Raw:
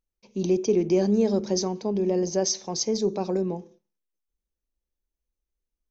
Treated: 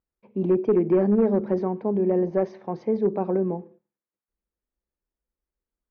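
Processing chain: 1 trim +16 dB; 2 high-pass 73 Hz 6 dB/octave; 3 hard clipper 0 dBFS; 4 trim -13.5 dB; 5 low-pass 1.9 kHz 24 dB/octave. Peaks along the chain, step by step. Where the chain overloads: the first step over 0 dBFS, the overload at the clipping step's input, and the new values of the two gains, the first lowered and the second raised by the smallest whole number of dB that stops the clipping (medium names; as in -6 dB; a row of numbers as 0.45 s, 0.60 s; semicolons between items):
+4.5 dBFS, +4.0 dBFS, 0.0 dBFS, -13.5 dBFS, -13.0 dBFS; step 1, 4.0 dB; step 1 +12 dB, step 4 -9.5 dB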